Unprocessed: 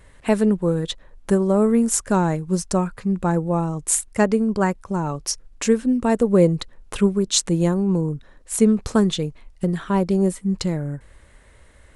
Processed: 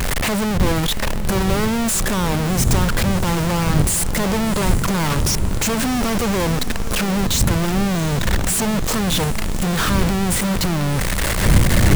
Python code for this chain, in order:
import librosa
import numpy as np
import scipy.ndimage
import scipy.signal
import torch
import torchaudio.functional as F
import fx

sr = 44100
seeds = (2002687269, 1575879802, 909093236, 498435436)

y = np.sign(x) * np.sqrt(np.mean(np.square(x)))
y = fx.dmg_wind(y, sr, seeds[0], corner_hz=120.0, level_db=-24.0)
y = fx.echo_diffused(y, sr, ms=715, feedback_pct=59, wet_db=-12.5)
y = F.gain(torch.from_numpy(y), 1.5).numpy()